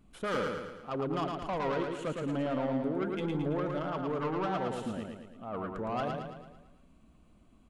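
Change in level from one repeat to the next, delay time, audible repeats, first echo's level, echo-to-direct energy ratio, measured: -5.5 dB, 0.111 s, 6, -4.0 dB, -2.5 dB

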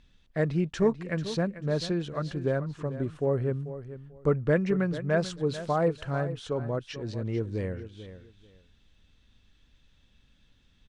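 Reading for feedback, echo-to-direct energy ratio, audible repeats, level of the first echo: 21%, -13.0 dB, 2, -13.0 dB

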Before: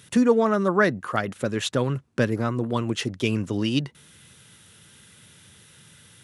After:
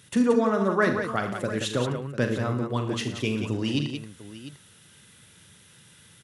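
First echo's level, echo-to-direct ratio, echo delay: -9.0 dB, -3.5 dB, 41 ms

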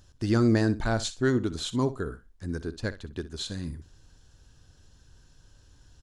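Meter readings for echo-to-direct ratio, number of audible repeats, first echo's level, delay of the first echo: -15.0 dB, 2, -15.0 dB, 62 ms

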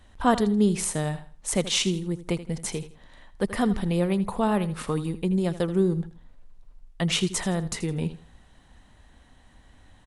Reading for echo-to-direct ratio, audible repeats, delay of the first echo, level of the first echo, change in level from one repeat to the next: -14.0 dB, 2, 81 ms, -14.5 dB, -11.0 dB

